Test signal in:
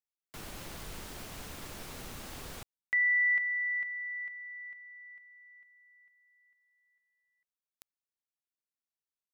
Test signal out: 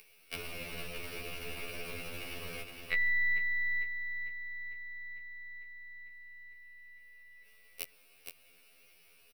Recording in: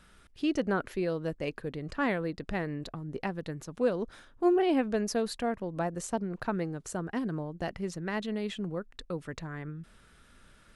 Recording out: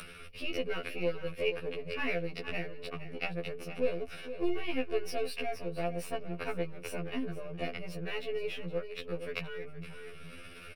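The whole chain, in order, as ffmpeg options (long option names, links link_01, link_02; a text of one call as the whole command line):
ffmpeg -i in.wav -filter_complex "[0:a]aeval=exprs='if(lt(val(0),0),0.251*val(0),val(0))':channel_layout=same,equalizer=frequency=690:width_type=o:width=0.22:gain=4,acrossover=split=140|1700[link_01][link_02][link_03];[link_02]acompressor=threshold=-31dB:ratio=6:release=956:knee=2.83:detection=peak[link_04];[link_01][link_04][link_03]amix=inputs=3:normalize=0,aecho=1:1:466:0.2,acompressor=mode=upward:threshold=-43dB:ratio=2.5:attack=52:release=24:knee=2.83:detection=peak,superequalizer=7b=2.51:9b=0.562:12b=3.55:15b=0.251,afftfilt=real='re*2*eq(mod(b,4),0)':imag='im*2*eq(mod(b,4),0)':win_size=2048:overlap=0.75" out.wav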